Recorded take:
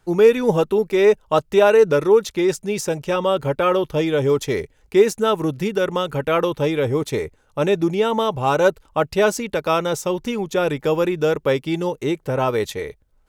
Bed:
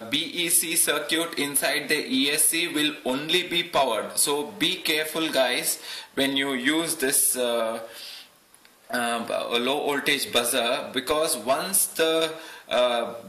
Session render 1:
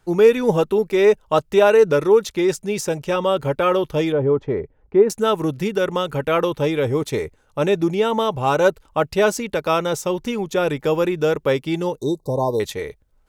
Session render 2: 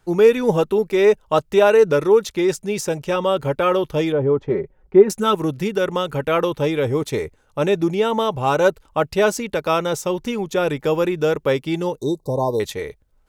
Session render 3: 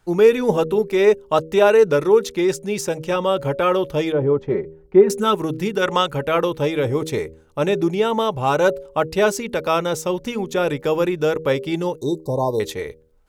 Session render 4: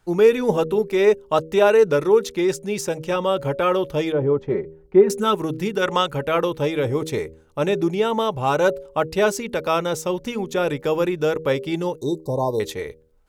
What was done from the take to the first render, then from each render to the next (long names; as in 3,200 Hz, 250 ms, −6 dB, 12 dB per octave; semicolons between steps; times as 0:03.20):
0:04.12–0:05.10: low-pass filter 1,100 Hz; 0:11.97–0:12.60: linear-phase brick-wall band-stop 1,100–3,600 Hz
0:04.49–0:05.35: comb filter 5.4 ms
hum removal 79.61 Hz, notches 7; 0:05.82–0:06.08: gain on a spectral selection 630–8,700 Hz +7 dB
level −1.5 dB